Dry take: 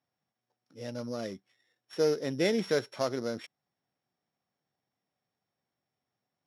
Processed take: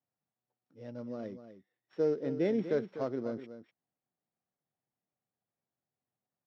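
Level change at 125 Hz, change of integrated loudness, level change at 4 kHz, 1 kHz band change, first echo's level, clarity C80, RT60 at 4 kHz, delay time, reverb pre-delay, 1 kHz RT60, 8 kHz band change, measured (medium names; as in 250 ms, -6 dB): -3.0 dB, -2.5 dB, -17.5 dB, -6.5 dB, -11.5 dB, no reverb, no reverb, 247 ms, no reverb, no reverb, under -20 dB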